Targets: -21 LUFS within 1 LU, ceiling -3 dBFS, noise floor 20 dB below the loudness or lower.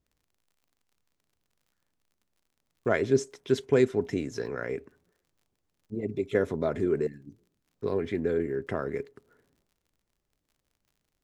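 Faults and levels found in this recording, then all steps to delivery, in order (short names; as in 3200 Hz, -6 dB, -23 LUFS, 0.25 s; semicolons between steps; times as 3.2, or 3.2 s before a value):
ticks 36/s; loudness -29.5 LUFS; peak -10.5 dBFS; loudness target -21.0 LUFS
-> de-click; gain +8.5 dB; limiter -3 dBFS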